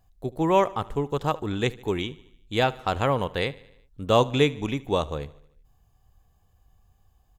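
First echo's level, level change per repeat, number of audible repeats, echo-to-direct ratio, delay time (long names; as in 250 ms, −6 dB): −21.0 dB, −4.5 dB, 3, −19.0 dB, 75 ms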